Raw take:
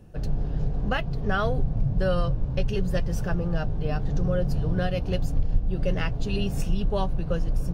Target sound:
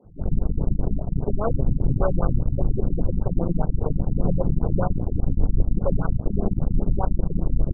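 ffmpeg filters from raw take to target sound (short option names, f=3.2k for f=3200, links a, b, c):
-filter_complex "[0:a]acrossover=split=230[a][b];[a]adelay=40[c];[c][b]amix=inputs=2:normalize=0,aeval=exprs='0.266*(cos(1*acos(clip(val(0)/0.266,-1,1)))-cos(1*PI/2))+0.0531*(cos(8*acos(clip(val(0)/0.266,-1,1)))-cos(8*PI/2))':c=same,afftfilt=real='re*lt(b*sr/1024,280*pow(1600/280,0.5+0.5*sin(2*PI*5*pts/sr)))':imag='im*lt(b*sr/1024,280*pow(1600/280,0.5+0.5*sin(2*PI*5*pts/sr)))':win_size=1024:overlap=0.75,volume=2dB"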